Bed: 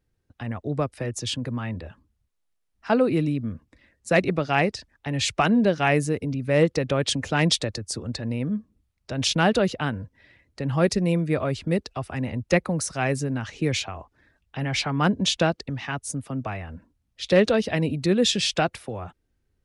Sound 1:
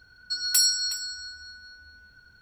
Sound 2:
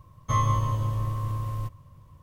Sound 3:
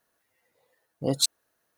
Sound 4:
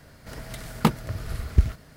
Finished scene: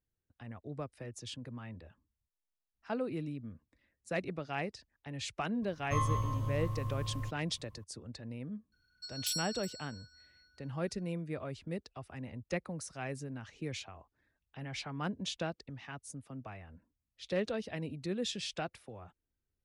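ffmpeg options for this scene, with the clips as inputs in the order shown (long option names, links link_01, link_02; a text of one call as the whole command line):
ffmpeg -i bed.wav -i cue0.wav -i cue1.wav -filter_complex "[0:a]volume=-15.5dB[link_01];[1:a]equalizer=frequency=760:width=0.75:gain=-10.5[link_02];[2:a]atrim=end=2.22,asetpts=PTS-STARTPTS,volume=-8dB,afade=type=in:duration=0.004:curve=hsin,afade=type=out:start_time=2.216:duration=0.004:curve=hsin,adelay=5620[link_03];[link_02]atrim=end=2.41,asetpts=PTS-STARTPTS,volume=-15.5dB,afade=type=in:duration=0.004:curve=hsin,afade=type=out:start_time=2.406:duration=0.004:curve=hsin,adelay=8720[link_04];[link_01][link_03][link_04]amix=inputs=3:normalize=0" out.wav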